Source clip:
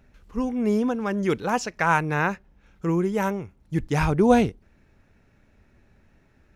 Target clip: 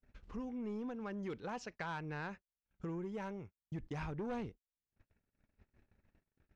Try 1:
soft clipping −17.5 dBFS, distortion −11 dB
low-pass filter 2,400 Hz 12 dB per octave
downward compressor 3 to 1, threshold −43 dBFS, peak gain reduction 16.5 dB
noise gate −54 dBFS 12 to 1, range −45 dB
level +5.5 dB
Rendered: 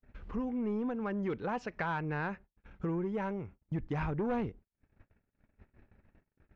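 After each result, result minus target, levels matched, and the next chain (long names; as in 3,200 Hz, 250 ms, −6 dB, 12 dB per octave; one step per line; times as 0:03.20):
downward compressor: peak gain reduction −7.5 dB; 4,000 Hz band −6.5 dB
soft clipping −17.5 dBFS, distortion −11 dB
low-pass filter 2,400 Hz 12 dB per octave
downward compressor 3 to 1, threshold −54.5 dBFS, peak gain reduction 24 dB
noise gate −54 dBFS 12 to 1, range −45 dB
level +5.5 dB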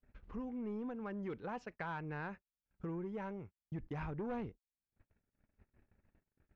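4,000 Hz band −7.0 dB
soft clipping −17.5 dBFS, distortion −11 dB
low-pass filter 5,300 Hz 12 dB per octave
downward compressor 3 to 1, threshold −54.5 dBFS, peak gain reduction 24 dB
noise gate −54 dBFS 12 to 1, range −45 dB
level +5.5 dB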